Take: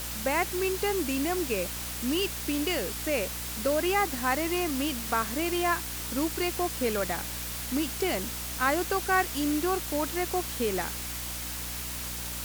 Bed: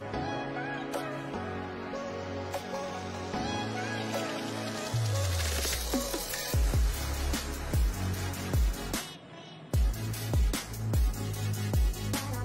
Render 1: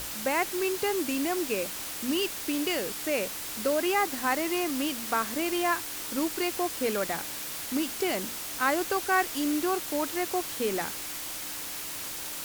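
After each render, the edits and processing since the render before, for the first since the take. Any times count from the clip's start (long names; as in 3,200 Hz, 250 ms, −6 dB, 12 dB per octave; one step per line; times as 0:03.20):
mains-hum notches 60/120/180/240 Hz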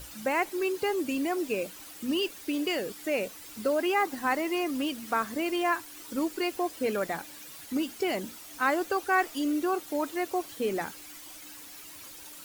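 broadband denoise 12 dB, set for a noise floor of −37 dBFS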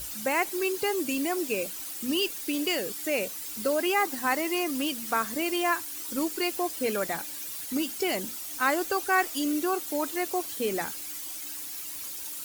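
high-shelf EQ 4,100 Hz +10.5 dB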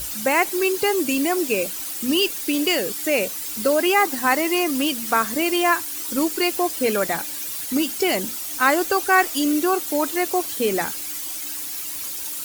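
level +7.5 dB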